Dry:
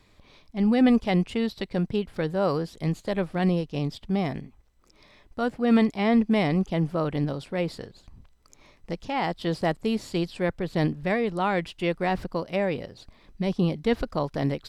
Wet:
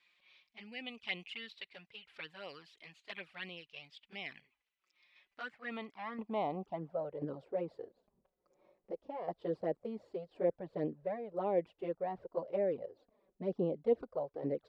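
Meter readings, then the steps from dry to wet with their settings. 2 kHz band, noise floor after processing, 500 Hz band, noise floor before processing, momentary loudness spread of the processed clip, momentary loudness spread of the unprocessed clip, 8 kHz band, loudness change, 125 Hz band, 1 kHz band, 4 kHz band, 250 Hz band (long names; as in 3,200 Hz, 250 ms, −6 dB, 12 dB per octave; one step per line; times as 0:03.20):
−13.0 dB, below −85 dBFS, −9.0 dB, −59 dBFS, 15 LU, 10 LU, can't be measured, −13.5 dB, −21.0 dB, −13.0 dB, −11.5 dB, −19.5 dB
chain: shaped tremolo saw down 0.97 Hz, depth 55%
flanger swept by the level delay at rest 5.9 ms, full sweep at −20.5 dBFS
band-pass filter sweep 2,600 Hz → 510 Hz, 0:05.26–0:07.07
level +1.5 dB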